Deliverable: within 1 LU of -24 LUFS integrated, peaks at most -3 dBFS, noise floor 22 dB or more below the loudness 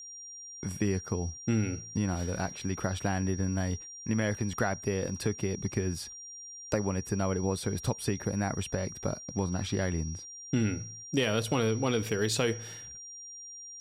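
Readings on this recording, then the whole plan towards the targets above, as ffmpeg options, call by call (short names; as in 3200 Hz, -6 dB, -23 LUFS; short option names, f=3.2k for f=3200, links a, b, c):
steady tone 5700 Hz; tone level -43 dBFS; loudness -32.0 LUFS; peak -15.0 dBFS; loudness target -24.0 LUFS
-> -af "bandreject=f=5.7k:w=30"
-af "volume=8dB"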